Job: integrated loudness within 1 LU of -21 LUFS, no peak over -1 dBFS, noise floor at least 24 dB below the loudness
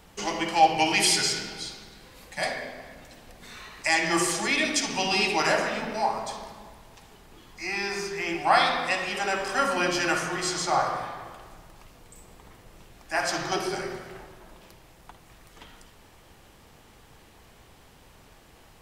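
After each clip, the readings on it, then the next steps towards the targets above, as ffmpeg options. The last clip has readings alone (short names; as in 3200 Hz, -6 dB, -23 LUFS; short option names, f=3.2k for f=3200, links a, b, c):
loudness -25.5 LUFS; peak -7.5 dBFS; loudness target -21.0 LUFS
-> -af "volume=4.5dB"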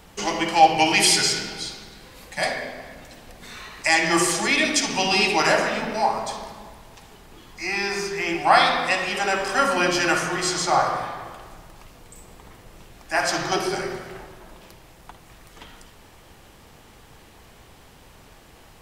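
loudness -21.0 LUFS; peak -3.0 dBFS; noise floor -50 dBFS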